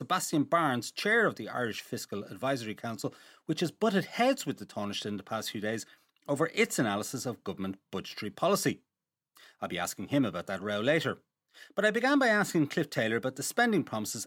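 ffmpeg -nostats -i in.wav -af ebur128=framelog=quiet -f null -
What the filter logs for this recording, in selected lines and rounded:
Integrated loudness:
  I:         -30.8 LUFS
  Threshold: -41.1 LUFS
Loudness range:
  LRA:         4.5 LU
  Threshold: -51.8 LUFS
  LRA low:   -33.7 LUFS
  LRA high:  -29.2 LUFS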